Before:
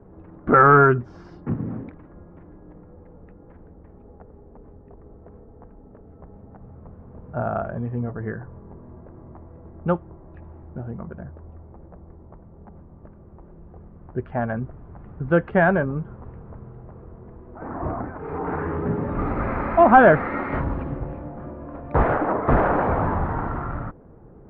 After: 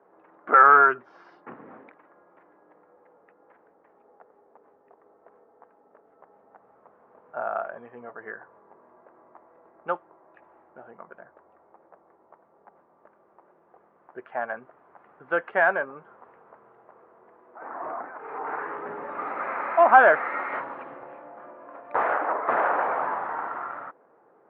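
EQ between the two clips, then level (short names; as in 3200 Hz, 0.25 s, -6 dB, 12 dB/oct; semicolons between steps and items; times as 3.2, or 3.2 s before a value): BPF 600–2500 Hz; tilt +2 dB/oct; 0.0 dB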